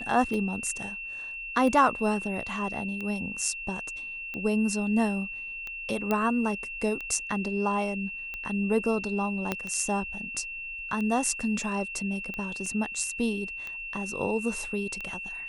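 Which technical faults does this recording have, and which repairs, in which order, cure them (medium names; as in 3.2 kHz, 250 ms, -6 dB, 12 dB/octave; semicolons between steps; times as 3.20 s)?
tick 45 rpm -23 dBFS
whine 2.7 kHz -35 dBFS
6.11 s: pop -14 dBFS
9.52 s: pop -13 dBFS
12.66 s: dropout 2.7 ms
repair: de-click; band-stop 2.7 kHz, Q 30; interpolate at 12.66 s, 2.7 ms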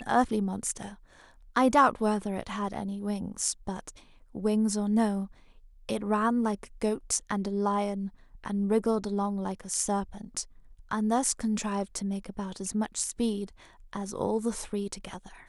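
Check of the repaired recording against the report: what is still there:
9.52 s: pop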